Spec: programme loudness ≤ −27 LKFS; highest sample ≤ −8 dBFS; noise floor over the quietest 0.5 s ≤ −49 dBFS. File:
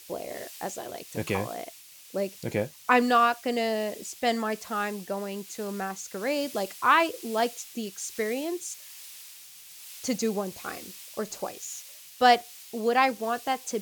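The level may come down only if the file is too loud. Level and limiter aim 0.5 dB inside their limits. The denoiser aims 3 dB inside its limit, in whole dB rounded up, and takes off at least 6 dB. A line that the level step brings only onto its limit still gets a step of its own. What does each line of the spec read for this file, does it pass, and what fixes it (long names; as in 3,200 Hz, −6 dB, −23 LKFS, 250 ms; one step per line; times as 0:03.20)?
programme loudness −28.5 LKFS: in spec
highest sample −6.0 dBFS: out of spec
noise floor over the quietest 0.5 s −48 dBFS: out of spec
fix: broadband denoise 6 dB, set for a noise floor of −48 dBFS
brickwall limiter −8.5 dBFS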